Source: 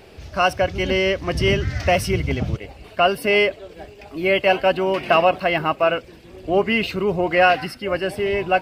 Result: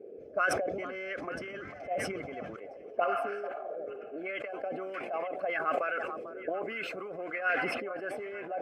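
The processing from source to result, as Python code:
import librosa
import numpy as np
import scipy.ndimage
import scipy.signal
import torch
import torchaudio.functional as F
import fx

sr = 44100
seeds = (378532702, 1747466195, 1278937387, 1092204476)

y = fx.spec_repair(x, sr, seeds[0], start_s=3.07, length_s=0.69, low_hz=560.0, high_hz=4400.0, source='both')
y = fx.high_shelf(y, sr, hz=6500.0, db=9.5, at=(4.82, 7.08))
y = fx.hpss(y, sr, part='harmonic', gain_db=-8)
y = fx.graphic_eq(y, sr, hz=(250, 500, 1000, 2000, 4000, 8000), db=(4, 8, -11, 3, -11, 4))
y = fx.over_compress(y, sr, threshold_db=-21.0, ratio=-0.5)
y = fx.auto_wah(y, sr, base_hz=400.0, top_hz=1500.0, q=3.4, full_db=-17.5, direction='up')
y = fx.notch_comb(y, sr, f0_hz=940.0)
y = fx.echo_stepped(y, sr, ms=445, hz=840.0, octaves=1.4, feedback_pct=70, wet_db=-11.0)
y = fx.sustainer(y, sr, db_per_s=30.0)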